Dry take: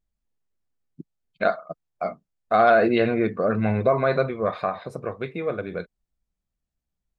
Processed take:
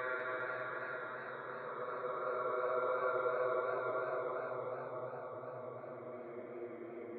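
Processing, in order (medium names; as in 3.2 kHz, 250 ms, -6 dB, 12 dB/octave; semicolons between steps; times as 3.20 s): Doppler pass-by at 2.42 s, 19 m/s, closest 7 m; LFO band-pass saw down 1.1 Hz 330–4000 Hz; Paulstretch 34×, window 0.10 s, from 4.06 s; modulated delay 202 ms, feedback 80%, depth 206 cents, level -11 dB; trim +6 dB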